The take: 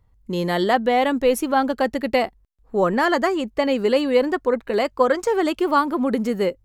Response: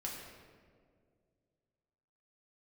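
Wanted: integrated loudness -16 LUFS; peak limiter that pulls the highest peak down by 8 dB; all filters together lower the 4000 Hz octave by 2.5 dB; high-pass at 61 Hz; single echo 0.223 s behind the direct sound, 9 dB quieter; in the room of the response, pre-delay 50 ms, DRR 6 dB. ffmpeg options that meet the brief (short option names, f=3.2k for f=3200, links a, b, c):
-filter_complex "[0:a]highpass=61,equalizer=f=4k:t=o:g=-3.5,alimiter=limit=-13.5dB:level=0:latency=1,aecho=1:1:223:0.355,asplit=2[a][b];[1:a]atrim=start_sample=2205,adelay=50[c];[b][c]afir=irnorm=-1:irlink=0,volume=-6dB[d];[a][d]amix=inputs=2:normalize=0,volume=5.5dB"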